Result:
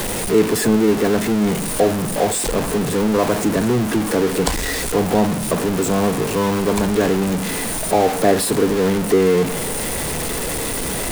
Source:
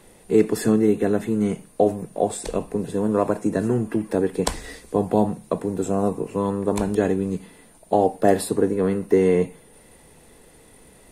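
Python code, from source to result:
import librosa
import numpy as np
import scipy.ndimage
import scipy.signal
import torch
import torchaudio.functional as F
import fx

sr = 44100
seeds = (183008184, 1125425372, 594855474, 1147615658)

y = x + 0.5 * 10.0 ** (-17.5 / 20.0) * np.sign(x)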